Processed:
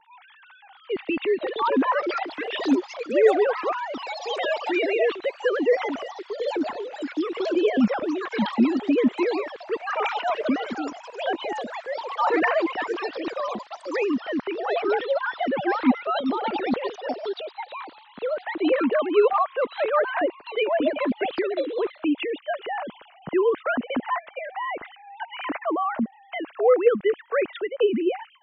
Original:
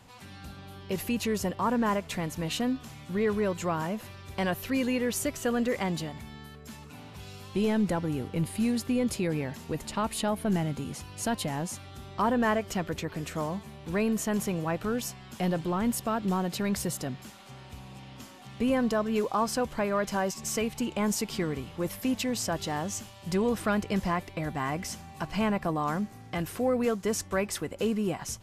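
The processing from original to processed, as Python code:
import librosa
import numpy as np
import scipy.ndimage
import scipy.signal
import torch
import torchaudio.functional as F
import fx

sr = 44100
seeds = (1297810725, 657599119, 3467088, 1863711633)

y = fx.sine_speech(x, sr)
y = fx.echo_pitch(y, sr, ms=741, semitones=5, count=3, db_per_echo=-6.0)
y = fx.wow_flutter(y, sr, seeds[0], rate_hz=2.1, depth_cents=16.0)
y = y * 10.0 ** (4.5 / 20.0)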